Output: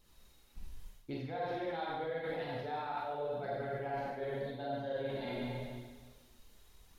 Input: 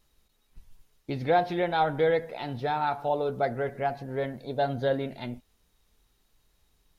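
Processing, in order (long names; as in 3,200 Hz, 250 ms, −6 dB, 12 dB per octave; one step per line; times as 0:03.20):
four-comb reverb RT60 1.4 s, combs from 32 ms, DRR −5.5 dB
reversed playback
downward compressor 12 to 1, threshold −35 dBFS, peak gain reduction 22 dB
reversed playback
flanger 0.85 Hz, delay 0.2 ms, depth 3.7 ms, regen −54%
level +3.5 dB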